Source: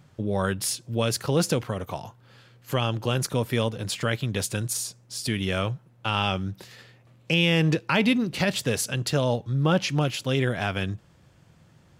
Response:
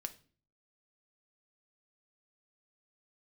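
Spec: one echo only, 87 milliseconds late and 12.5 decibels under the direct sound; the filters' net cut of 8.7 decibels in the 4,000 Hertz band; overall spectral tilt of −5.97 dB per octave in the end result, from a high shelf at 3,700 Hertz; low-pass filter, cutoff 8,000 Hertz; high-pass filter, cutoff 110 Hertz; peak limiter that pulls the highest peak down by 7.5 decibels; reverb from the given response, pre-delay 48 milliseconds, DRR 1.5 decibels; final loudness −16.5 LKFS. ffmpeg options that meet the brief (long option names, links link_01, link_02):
-filter_complex "[0:a]highpass=110,lowpass=8000,highshelf=frequency=3700:gain=-7.5,equalizer=frequency=4000:width_type=o:gain=-7.5,alimiter=limit=-17.5dB:level=0:latency=1,aecho=1:1:87:0.237,asplit=2[link_01][link_02];[1:a]atrim=start_sample=2205,adelay=48[link_03];[link_02][link_03]afir=irnorm=-1:irlink=0,volume=1dB[link_04];[link_01][link_04]amix=inputs=2:normalize=0,volume=11dB"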